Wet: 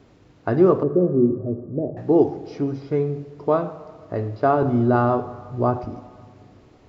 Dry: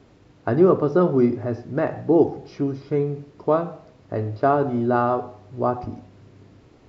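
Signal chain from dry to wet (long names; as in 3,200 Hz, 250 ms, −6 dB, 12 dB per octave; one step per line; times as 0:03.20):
0:00.83–0:01.97: inverse Chebyshev low-pass filter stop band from 1,100 Hz, stop band 40 dB
0:04.62–0:05.79: low-shelf EQ 200 Hz +9 dB
dense smooth reverb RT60 2.2 s, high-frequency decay 0.6×, DRR 15.5 dB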